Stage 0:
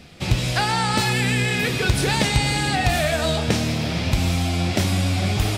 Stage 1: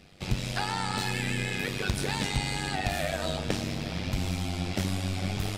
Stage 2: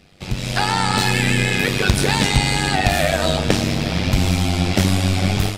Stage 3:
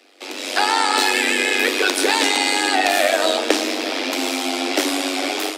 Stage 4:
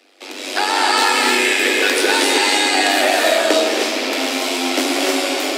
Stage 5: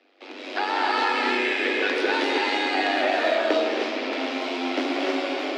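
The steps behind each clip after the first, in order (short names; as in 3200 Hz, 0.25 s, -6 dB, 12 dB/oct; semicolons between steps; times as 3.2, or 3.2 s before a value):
AM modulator 96 Hz, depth 70%; gain -6 dB
AGC gain up to 10 dB; gain +3 dB
steep high-pass 260 Hz 96 dB/oct; gain +2 dB
non-linear reverb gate 0.34 s rising, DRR -2 dB; gain -1 dB
air absorption 240 m; gain -5.5 dB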